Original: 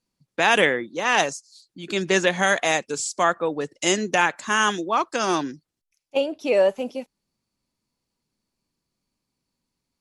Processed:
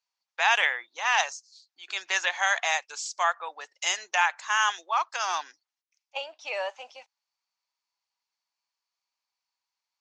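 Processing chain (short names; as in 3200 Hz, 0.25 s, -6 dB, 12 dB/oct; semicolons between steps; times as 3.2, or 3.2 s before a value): elliptic band-pass 800–6400 Hz, stop band 80 dB; gain -2.5 dB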